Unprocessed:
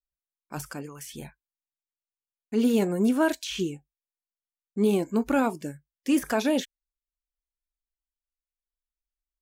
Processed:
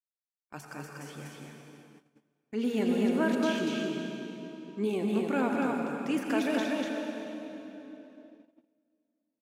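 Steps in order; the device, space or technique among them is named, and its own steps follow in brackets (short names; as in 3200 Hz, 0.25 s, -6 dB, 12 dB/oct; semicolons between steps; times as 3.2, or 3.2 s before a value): stadium PA (HPF 150 Hz 12 dB/oct; bell 2100 Hz +5.5 dB 0.97 oct; loudspeakers at several distances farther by 69 m -12 dB, 83 m -3 dB; reverb RT60 3.7 s, pre-delay 78 ms, DRR 2 dB); gate -46 dBFS, range -16 dB; high shelf 8600 Hz -11 dB; gain -7.5 dB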